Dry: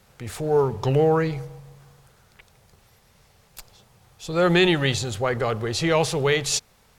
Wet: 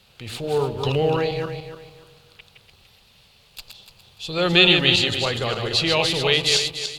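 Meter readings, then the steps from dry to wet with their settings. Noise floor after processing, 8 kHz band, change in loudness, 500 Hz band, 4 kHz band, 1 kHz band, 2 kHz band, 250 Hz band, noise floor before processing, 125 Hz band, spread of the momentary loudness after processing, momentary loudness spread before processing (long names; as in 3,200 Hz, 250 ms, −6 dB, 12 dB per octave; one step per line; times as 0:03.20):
−56 dBFS, −1.0 dB, +3.0 dB, −1.0 dB, +10.5 dB, −1.0 dB, +4.5 dB, −1.0 dB, −59 dBFS, −1.5 dB, 17 LU, 13 LU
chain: feedback delay that plays each chunk backwards 146 ms, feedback 53%, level −5 dB
flat-topped bell 3,400 Hz +12 dB 1.1 octaves
level −2.5 dB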